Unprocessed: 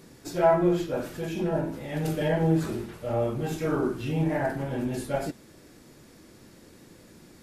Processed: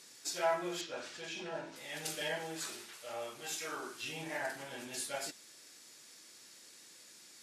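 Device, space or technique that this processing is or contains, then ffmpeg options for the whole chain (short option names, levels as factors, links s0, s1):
piezo pickup straight into a mixer: -filter_complex "[0:a]asettb=1/sr,asplit=3[s0][s1][s2];[s0]atrim=end=0.814[s3];[s1]atrim=start=0.81:end=1.76,asetpts=PTS-STARTPTS,afade=t=in:d=0.004:c=qsin,afade=t=out:st=0.946:d=0.004:c=qsin,lowpass=5300[s4];[s2]atrim=start=1.756[s5];[s3][s4]acrossfade=d=0.004:c1=hsin:c2=qsin[s6];[s6][s5]acrossfade=d=0.004:c1=qsin:c2=hsin,lowpass=7200,aderivative,asettb=1/sr,asplit=3[s7][s8][s9];[s7]atrim=end=2.404[s10];[s8]atrim=start=2.4:end=4.03,asetpts=PTS-STARTPTS,afade=t=in:d=0.004:c=qsin,afade=t=out:st=1.626:d=0.004:c=qsin,lowshelf=f=330:g=-7.5[s11];[s9]atrim=start=4.026[s12];[s10][s11]acrossfade=d=0.004:c1=hsin:c2=qsin[s13];[s13][s12]acrossfade=d=0.004:c1=qsin:c2=hsin,volume=2.66"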